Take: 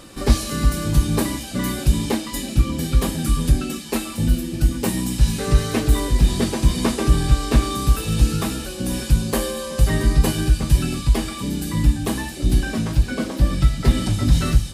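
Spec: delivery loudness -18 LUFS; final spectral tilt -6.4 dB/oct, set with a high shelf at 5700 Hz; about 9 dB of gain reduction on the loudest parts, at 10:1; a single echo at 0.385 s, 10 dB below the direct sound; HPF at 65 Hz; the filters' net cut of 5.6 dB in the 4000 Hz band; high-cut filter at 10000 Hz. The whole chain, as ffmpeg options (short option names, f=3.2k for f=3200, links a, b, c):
-af "highpass=65,lowpass=10k,equalizer=f=4k:t=o:g=-5,highshelf=f=5.7k:g=-5.5,acompressor=threshold=-22dB:ratio=10,aecho=1:1:385:0.316,volume=10dB"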